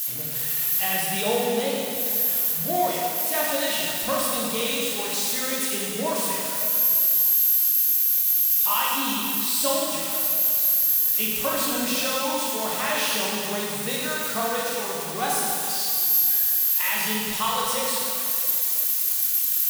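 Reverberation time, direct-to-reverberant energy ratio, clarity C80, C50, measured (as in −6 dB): 2.6 s, −5.5 dB, −0.5 dB, −2.5 dB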